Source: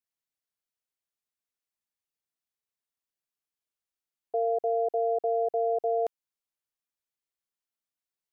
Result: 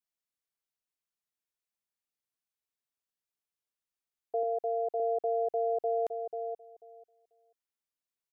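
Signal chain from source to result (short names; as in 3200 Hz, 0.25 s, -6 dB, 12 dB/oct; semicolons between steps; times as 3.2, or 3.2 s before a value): 4.43–5 HPF 350 Hz 6 dB/oct; 5.61–6.05 echo throw 0.49 s, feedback 15%, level -6.5 dB; gain -3 dB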